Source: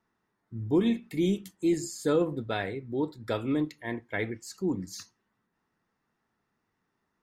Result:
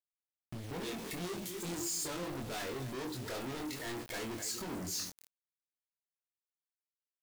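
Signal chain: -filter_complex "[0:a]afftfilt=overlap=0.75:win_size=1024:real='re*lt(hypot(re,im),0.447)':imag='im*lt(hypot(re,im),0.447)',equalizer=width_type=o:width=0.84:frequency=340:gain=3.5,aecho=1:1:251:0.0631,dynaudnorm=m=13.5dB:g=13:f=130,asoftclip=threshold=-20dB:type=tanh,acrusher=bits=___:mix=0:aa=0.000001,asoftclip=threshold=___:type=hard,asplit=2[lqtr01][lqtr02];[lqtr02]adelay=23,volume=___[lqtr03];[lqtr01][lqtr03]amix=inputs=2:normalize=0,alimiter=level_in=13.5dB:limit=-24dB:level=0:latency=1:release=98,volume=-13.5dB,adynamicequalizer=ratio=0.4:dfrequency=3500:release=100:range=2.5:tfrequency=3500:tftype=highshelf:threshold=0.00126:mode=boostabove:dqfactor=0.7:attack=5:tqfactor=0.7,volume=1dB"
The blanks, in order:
6, -32.5dB, -4.5dB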